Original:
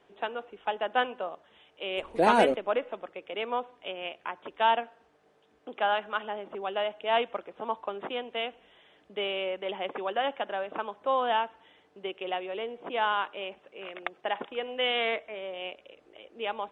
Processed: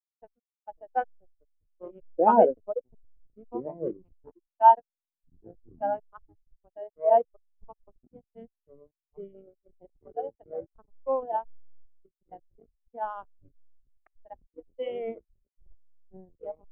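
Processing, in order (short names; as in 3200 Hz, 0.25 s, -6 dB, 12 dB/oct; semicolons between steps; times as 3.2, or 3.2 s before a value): echoes that change speed 0.448 s, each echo -6 st, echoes 3, each echo -6 dB; backlash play -22 dBFS; spectral expander 2.5:1; gain +4 dB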